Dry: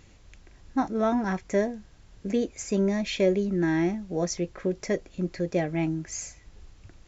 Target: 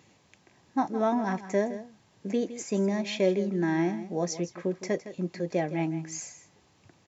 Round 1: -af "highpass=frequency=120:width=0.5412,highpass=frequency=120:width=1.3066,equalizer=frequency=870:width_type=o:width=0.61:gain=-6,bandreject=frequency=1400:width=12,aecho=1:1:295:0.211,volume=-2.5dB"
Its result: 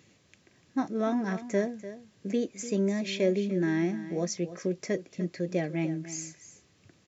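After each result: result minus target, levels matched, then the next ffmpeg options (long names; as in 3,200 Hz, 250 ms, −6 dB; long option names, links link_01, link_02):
echo 133 ms late; 1,000 Hz band −6.5 dB
-af "highpass=frequency=120:width=0.5412,highpass=frequency=120:width=1.3066,equalizer=frequency=870:width_type=o:width=0.61:gain=-6,bandreject=frequency=1400:width=12,aecho=1:1:162:0.211,volume=-2.5dB"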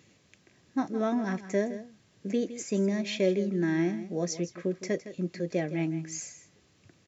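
1,000 Hz band −6.0 dB
-af "highpass=frequency=120:width=0.5412,highpass=frequency=120:width=1.3066,equalizer=frequency=870:width_type=o:width=0.61:gain=5,bandreject=frequency=1400:width=12,aecho=1:1:162:0.211,volume=-2.5dB"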